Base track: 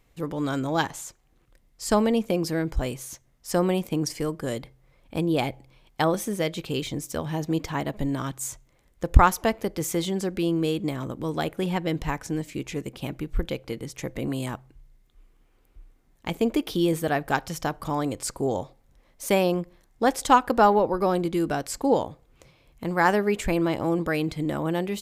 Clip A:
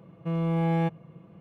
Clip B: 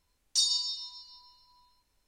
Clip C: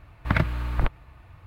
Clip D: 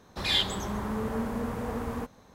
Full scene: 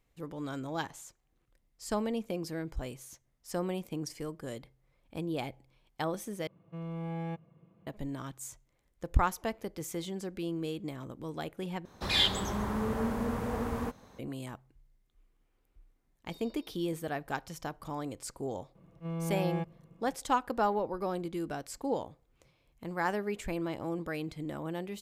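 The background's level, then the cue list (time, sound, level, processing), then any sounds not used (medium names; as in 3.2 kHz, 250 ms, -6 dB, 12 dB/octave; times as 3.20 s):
base track -11 dB
6.47 s: replace with A -12 dB
11.85 s: replace with D -0.5 dB
15.94 s: add B -16.5 dB + low-pass 2.8 kHz 24 dB/octave
18.75 s: add A -8.5 dB + attacks held to a fixed rise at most 360 dB/s
not used: C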